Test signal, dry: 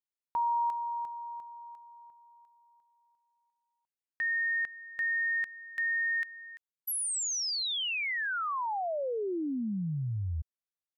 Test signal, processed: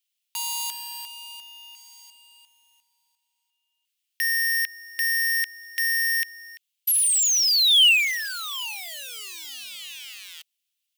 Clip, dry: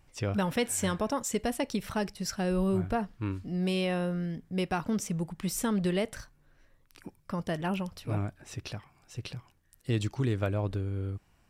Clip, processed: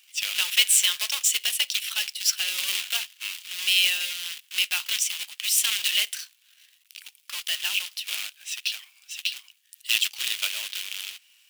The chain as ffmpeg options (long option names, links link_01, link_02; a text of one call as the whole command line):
ffmpeg -i in.wav -af "acrusher=bits=2:mode=log:mix=0:aa=0.000001,highpass=frequency=2900:width_type=q:width=3.3,highshelf=frequency=5800:gain=6.5,volume=7.5dB" out.wav